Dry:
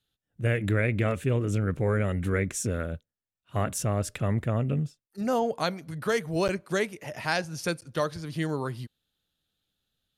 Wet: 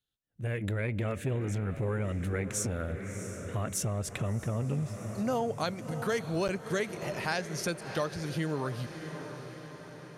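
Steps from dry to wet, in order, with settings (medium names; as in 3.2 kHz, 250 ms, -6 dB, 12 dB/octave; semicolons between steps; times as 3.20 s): level rider gain up to 12.5 dB; on a send: echo that smears into a reverb 661 ms, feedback 57%, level -14 dB; on the sum: compression 2:1, threshold -22 dBFS, peak gain reduction 7 dB; peaking EQ 6.3 kHz +2 dB 0.21 oct; transformer saturation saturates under 300 Hz; trim -9 dB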